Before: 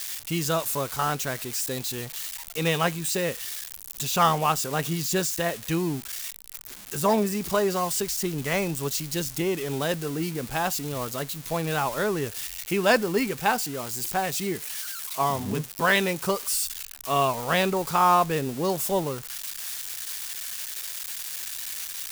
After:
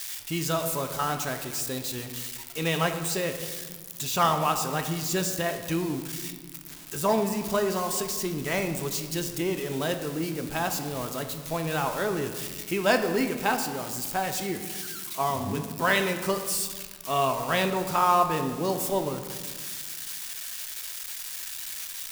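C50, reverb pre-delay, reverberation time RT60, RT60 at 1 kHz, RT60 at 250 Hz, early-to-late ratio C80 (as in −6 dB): 8.5 dB, 3 ms, 1.5 s, 1.5 s, 2.3 s, 10.0 dB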